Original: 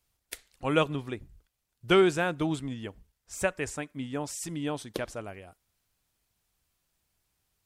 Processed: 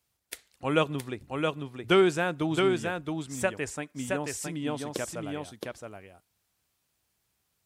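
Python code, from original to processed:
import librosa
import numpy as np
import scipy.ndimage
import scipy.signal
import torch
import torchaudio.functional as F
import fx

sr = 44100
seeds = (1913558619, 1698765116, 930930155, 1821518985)

p1 = scipy.signal.sosfilt(scipy.signal.butter(2, 78.0, 'highpass', fs=sr, output='sos'), x)
y = p1 + fx.echo_single(p1, sr, ms=669, db=-4.0, dry=0)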